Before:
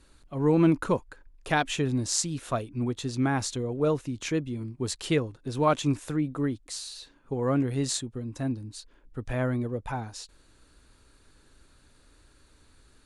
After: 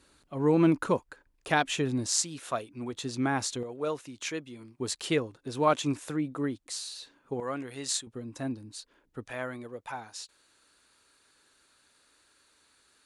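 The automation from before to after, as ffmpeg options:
ffmpeg -i in.wav -af "asetnsamples=nb_out_samples=441:pad=0,asendcmd='2.07 highpass f 550;2.93 highpass f 250;3.63 highpass f 860;4.8 highpass f 270;7.4 highpass f 1100;8.07 highpass f 290;9.27 highpass f 1000',highpass=frequency=180:poles=1" out.wav

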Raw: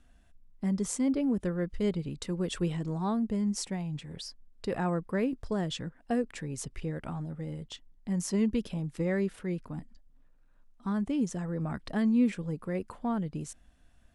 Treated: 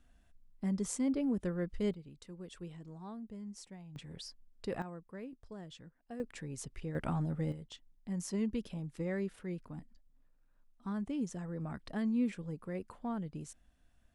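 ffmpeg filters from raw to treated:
ffmpeg -i in.wav -af "asetnsamples=nb_out_samples=441:pad=0,asendcmd='1.94 volume volume -16dB;3.96 volume volume -5.5dB;4.82 volume volume -16.5dB;6.2 volume volume -6dB;6.95 volume volume 2.5dB;7.52 volume volume -7dB',volume=-4.5dB" out.wav

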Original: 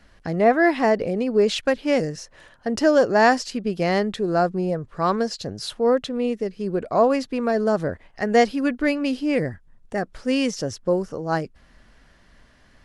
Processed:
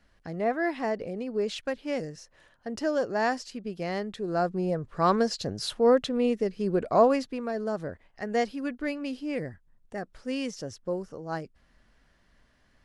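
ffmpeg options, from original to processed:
ffmpeg -i in.wav -af "volume=-1.5dB,afade=type=in:start_time=4.11:duration=0.97:silence=0.354813,afade=type=out:start_time=6.95:duration=0.48:silence=0.375837" out.wav

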